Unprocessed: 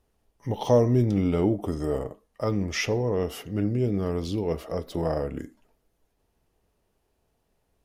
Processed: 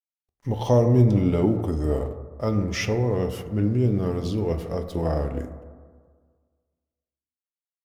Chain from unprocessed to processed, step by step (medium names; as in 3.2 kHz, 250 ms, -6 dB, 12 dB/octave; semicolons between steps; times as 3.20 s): bass shelf 150 Hz +6 dB; crossover distortion -53.5 dBFS; reverberation RT60 1.7 s, pre-delay 6 ms, DRR 7 dB; 1.71–3.71 s: tape noise reduction on one side only decoder only